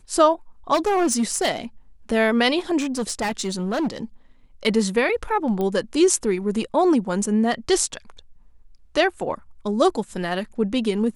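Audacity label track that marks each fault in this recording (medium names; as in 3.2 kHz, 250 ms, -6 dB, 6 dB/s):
0.730000	1.500000	clipped -16 dBFS
2.790000	3.980000	clipped -20 dBFS
5.610000	5.610000	pop -15 dBFS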